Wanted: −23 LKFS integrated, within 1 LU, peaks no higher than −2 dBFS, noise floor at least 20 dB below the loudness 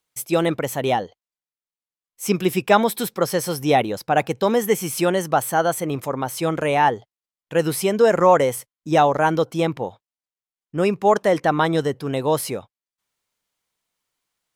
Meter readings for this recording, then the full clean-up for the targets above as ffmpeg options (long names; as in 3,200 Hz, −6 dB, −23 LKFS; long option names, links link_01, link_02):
integrated loudness −20.5 LKFS; sample peak −1.5 dBFS; target loudness −23.0 LKFS
→ -af "volume=-2.5dB"